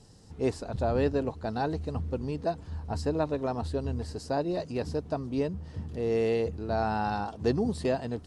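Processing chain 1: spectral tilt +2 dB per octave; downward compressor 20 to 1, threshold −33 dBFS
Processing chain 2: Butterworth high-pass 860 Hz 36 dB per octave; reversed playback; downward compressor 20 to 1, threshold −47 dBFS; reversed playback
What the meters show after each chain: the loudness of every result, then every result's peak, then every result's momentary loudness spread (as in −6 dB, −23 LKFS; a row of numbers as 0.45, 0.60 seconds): −39.0, −52.0 LKFS; −21.5, −33.0 dBFS; 4, 4 LU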